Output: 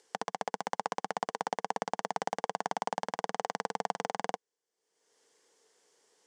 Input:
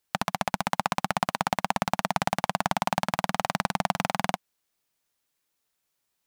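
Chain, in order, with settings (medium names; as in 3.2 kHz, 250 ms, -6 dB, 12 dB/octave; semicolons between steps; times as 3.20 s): peaking EQ 450 Hz +14.5 dB 0.5 oct; upward compressor, threshold -39 dBFS; cabinet simulation 320–7900 Hz, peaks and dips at 610 Hz -5 dB, 1.3 kHz -7 dB, 2.5 kHz -10 dB, 3.9 kHz -8 dB; trim -6 dB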